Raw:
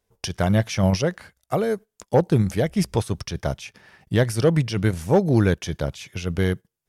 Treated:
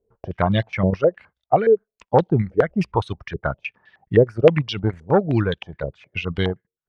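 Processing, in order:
reverb reduction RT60 2 s
low-pass on a step sequencer 9.6 Hz 440–3,500 Hz

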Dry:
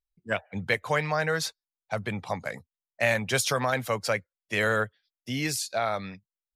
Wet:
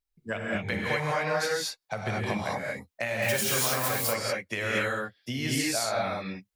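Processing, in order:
0:03.22–0:03.91: spike at every zero crossing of −18.5 dBFS
downward compressor 4 to 1, threshold −33 dBFS, peak gain reduction 12.5 dB
reverb whose tail is shaped and stops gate 260 ms rising, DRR −4.5 dB
level +2 dB

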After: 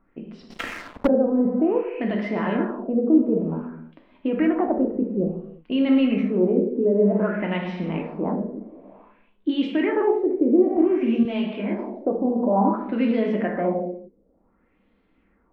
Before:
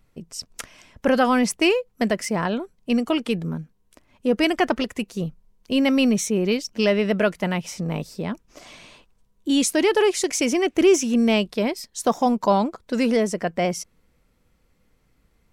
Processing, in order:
brickwall limiter −18.5 dBFS, peak gain reduction 10.5 dB
low shelf with overshoot 170 Hz −7.5 dB, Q 3
reverb whose tail is shaped and stops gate 380 ms falling, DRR −0.5 dB
auto-filter low-pass sine 0.55 Hz 420–3,800 Hz
high-frequency loss of the air 480 metres
0:00.50–0:01.07: leveller curve on the samples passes 3
0:11.23–0:11.79: micro pitch shift up and down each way 19 cents

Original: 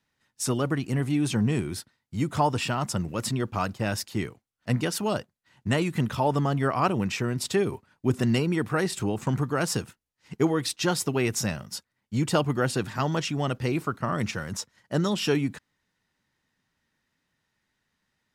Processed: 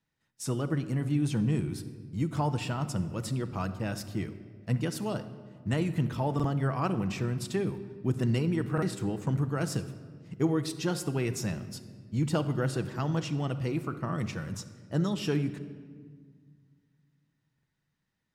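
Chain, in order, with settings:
low-shelf EQ 370 Hz +7 dB
rectangular room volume 2,400 cubic metres, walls mixed, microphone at 0.67 metres
buffer that repeats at 0:06.35/0:08.73/0:17.54, samples 2,048, times 1
level −9 dB

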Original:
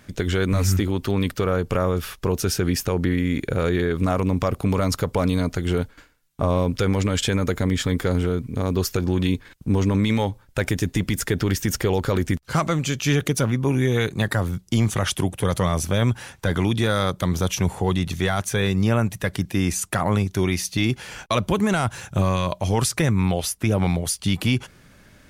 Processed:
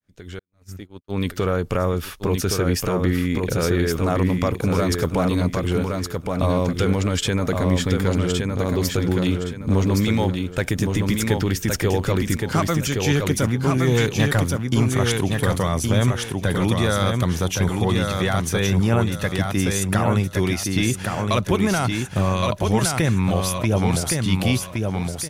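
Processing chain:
fade in at the beginning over 1.37 s
0:00.39–0:01.18: noise gate −22 dBFS, range −56 dB
0:08.18–0:08.64: low-pass filter 7,000 Hz
0:13.87–0:14.44: leveller curve on the samples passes 1
repeating echo 1,117 ms, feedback 29%, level −4 dB

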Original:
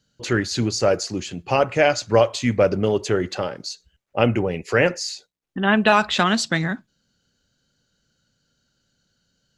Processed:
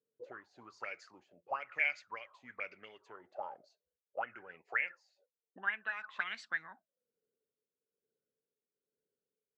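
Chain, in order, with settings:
amplitude tremolo 1.1 Hz, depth 55%
envelope filter 430–2,200 Hz, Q 13, up, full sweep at −16.5 dBFS

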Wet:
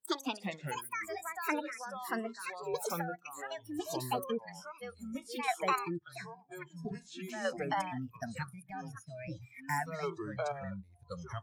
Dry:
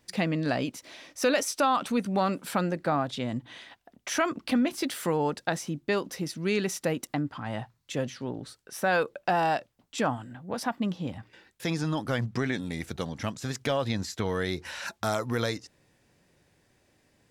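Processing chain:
gliding playback speed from 175% → 128%
square-wave tremolo 0.73 Hz, depth 65%, duty 20%
noise reduction from a noise print of the clip's start 26 dB
delay with pitch and tempo change per echo 133 ms, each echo −5 semitones, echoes 3
level −4 dB

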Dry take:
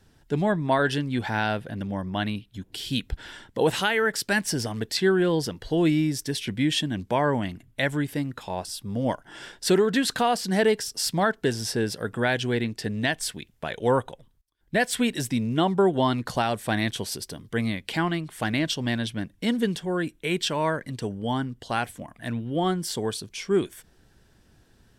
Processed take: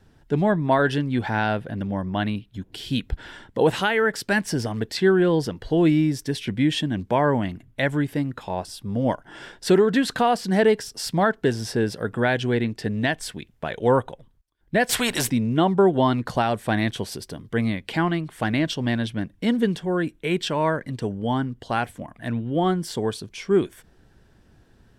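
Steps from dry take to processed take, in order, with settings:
high-shelf EQ 3,100 Hz −9 dB
0:14.89–0:15.30: every bin compressed towards the loudest bin 2 to 1
level +3.5 dB

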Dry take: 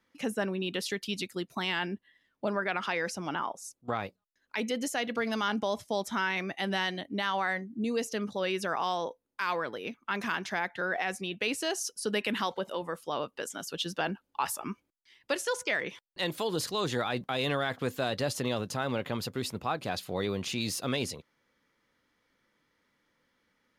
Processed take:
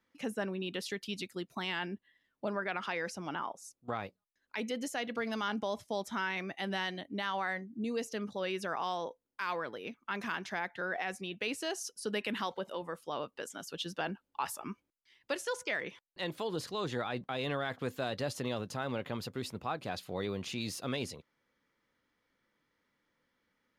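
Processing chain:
high-shelf EQ 5,200 Hz −3 dB, from 0:15.91 −9.5 dB, from 0:17.65 −4.5 dB
level −4.5 dB

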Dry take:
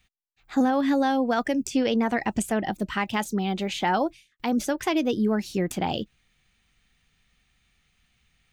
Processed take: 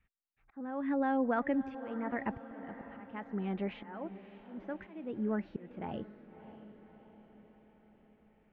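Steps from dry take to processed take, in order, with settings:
volume swells 615 ms
low-pass filter 2,100 Hz 24 dB per octave
notch filter 750 Hz, Q 12
feedback delay with all-pass diffusion 604 ms, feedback 57%, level −14 dB
level −6.5 dB

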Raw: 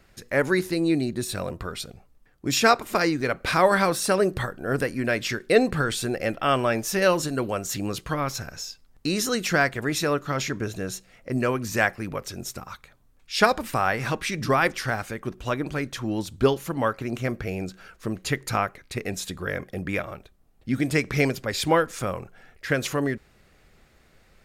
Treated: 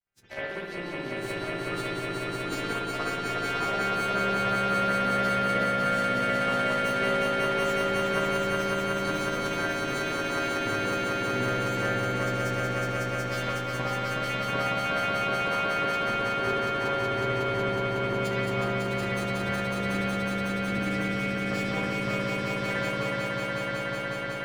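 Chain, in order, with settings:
every partial snapped to a pitch grid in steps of 2 semitones
noise gate with hold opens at −46 dBFS
low-pass filter 3,100 Hz 6 dB per octave
downward compressor 10 to 1, threshold −30 dBFS, peak gain reduction 17.5 dB
power curve on the samples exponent 2
spring reverb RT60 1 s, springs 56 ms, chirp 75 ms, DRR −9.5 dB
pitch-shifted copies added +5 semitones −16 dB
on a send: echo that builds up and dies away 184 ms, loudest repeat 5, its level −3.5 dB
on the sum: level −3 dB

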